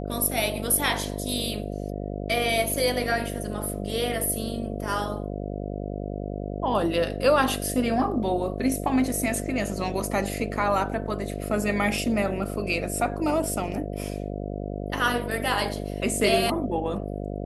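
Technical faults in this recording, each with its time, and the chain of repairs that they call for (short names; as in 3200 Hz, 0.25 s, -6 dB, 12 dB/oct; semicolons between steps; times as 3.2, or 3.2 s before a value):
buzz 50 Hz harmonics 14 -32 dBFS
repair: de-hum 50 Hz, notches 14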